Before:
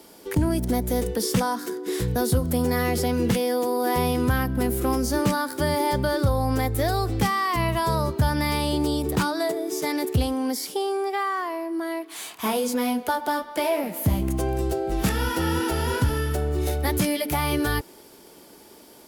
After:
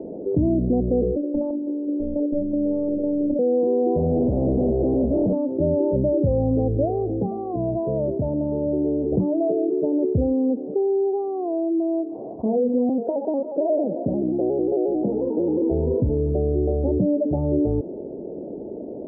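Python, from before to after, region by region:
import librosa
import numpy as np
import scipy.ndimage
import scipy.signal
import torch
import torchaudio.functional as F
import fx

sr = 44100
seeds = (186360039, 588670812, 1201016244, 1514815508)

y = fx.chain(x, sr, fx.tilt_shelf(db=-4.0, hz=1200.0),
    fx.filter_lfo_lowpass(shape='saw_up', hz=2.9, low_hz=400.0, high_hz=2500.0, q=0.93),
    fx.robotise(hz=292.0), at=(1.16, 3.39))
y = fx.chain(y, sr, fx.clip_1bit(),
    fx.doppler_dist(depth_ms=0.41), at=(3.97, 5.33))
y = fx.chain(y, sr, fx.lowpass(hz=1100.0, slope=12),
    fx.tilt_eq(slope=3.0),
    fx.echo_single(ms=462, db=-21.5), at=(6.85, 9.12))
y = fx.chain(y, sr, fx.highpass(hz=260.0, slope=12),
    fx.vibrato_shape(shape='square', rate_hz=5.6, depth_cents=100.0), at=(12.89, 15.62))
y = scipy.signal.sosfilt(scipy.signal.butter(8, 640.0, 'lowpass', fs=sr, output='sos'), y)
y = fx.low_shelf(y, sr, hz=80.0, db=-11.5)
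y = fx.env_flatten(y, sr, amount_pct=50)
y = y * librosa.db_to_amplitude(3.0)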